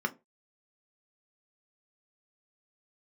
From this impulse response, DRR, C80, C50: 4.0 dB, 29.5 dB, 22.0 dB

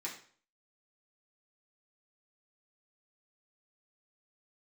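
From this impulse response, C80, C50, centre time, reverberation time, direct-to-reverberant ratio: 11.5 dB, 7.5 dB, 23 ms, 0.50 s, -5.5 dB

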